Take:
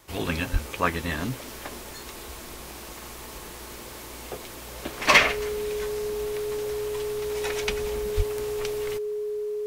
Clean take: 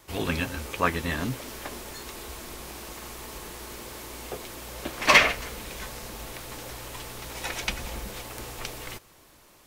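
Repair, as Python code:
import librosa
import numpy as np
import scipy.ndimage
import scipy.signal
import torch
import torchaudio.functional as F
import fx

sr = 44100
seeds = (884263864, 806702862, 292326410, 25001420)

y = fx.notch(x, sr, hz=420.0, q=30.0)
y = fx.fix_deplosive(y, sr, at_s=(0.52, 8.16))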